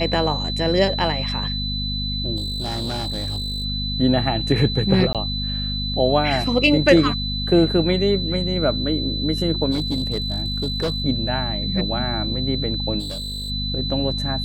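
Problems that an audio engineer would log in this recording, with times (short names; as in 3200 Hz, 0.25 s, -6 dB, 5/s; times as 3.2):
hum 50 Hz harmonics 5 -27 dBFS
tone 4000 Hz -26 dBFS
2.36–3.65 clipped -22.5 dBFS
5.13–5.15 gap 17 ms
9.71–11.02 clipped -18 dBFS
12.99–13.51 clipped -26.5 dBFS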